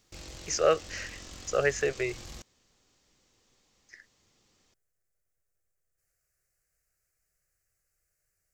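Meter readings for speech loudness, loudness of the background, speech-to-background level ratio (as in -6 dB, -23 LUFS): -29.5 LUFS, -45.5 LUFS, 16.0 dB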